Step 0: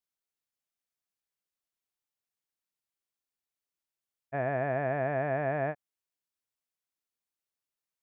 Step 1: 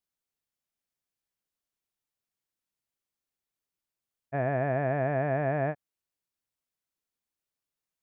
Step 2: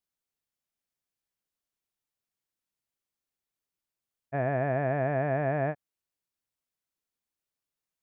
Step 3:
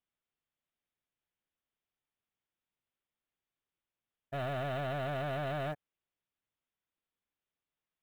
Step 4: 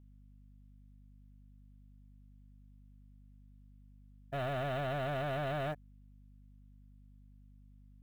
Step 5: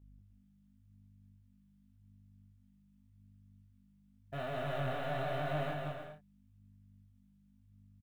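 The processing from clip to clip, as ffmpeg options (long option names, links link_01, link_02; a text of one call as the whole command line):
ffmpeg -i in.wav -af "lowshelf=frequency=370:gain=6" out.wav
ffmpeg -i in.wav -af anull out.wav
ffmpeg -i in.wav -af "aresample=8000,asoftclip=type=hard:threshold=-34.5dB,aresample=44100,acrusher=bits=7:mode=log:mix=0:aa=0.000001" out.wav
ffmpeg -i in.wav -af "aeval=exprs='val(0)+0.00141*(sin(2*PI*50*n/s)+sin(2*PI*2*50*n/s)/2+sin(2*PI*3*50*n/s)/3+sin(2*PI*4*50*n/s)/4+sin(2*PI*5*50*n/s)/5)':channel_layout=same" out.wav
ffmpeg -i in.wav -filter_complex "[0:a]asplit=2[link_01][link_02];[link_02]aecho=0:1:190|304|372.4|413.4|438.1:0.631|0.398|0.251|0.158|0.1[link_03];[link_01][link_03]amix=inputs=2:normalize=0,flanger=delay=19:depth=6.6:speed=0.88" out.wav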